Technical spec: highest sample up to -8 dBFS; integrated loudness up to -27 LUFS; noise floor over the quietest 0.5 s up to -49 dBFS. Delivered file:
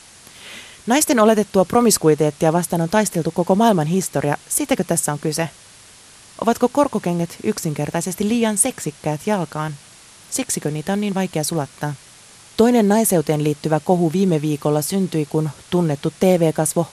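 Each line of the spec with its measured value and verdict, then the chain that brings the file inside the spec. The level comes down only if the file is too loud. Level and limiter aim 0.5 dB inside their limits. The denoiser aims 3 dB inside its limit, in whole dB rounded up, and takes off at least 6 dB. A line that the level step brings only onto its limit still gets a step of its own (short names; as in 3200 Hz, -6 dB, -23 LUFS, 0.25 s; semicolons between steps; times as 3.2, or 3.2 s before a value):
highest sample -3.0 dBFS: fail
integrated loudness -19.0 LUFS: fail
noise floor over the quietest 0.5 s -45 dBFS: fail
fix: gain -8.5 dB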